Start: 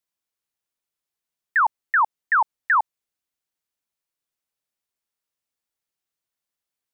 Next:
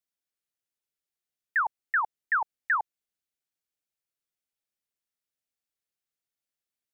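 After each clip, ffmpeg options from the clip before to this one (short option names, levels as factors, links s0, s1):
-af "equalizer=f=1000:w=3.2:g=-7.5,volume=0.562"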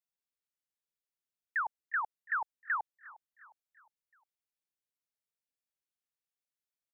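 -af "aecho=1:1:357|714|1071|1428:0.1|0.05|0.025|0.0125,volume=0.447"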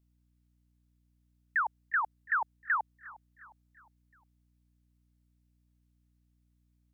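-af "aeval=exprs='val(0)+0.000224*(sin(2*PI*60*n/s)+sin(2*PI*2*60*n/s)/2+sin(2*PI*3*60*n/s)/3+sin(2*PI*4*60*n/s)/4+sin(2*PI*5*60*n/s)/5)':c=same,volume=1.5"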